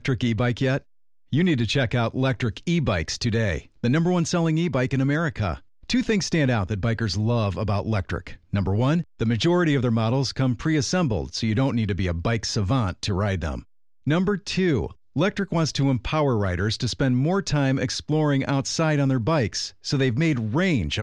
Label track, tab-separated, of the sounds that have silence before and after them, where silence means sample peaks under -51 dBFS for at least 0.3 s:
1.300000	13.640000	sound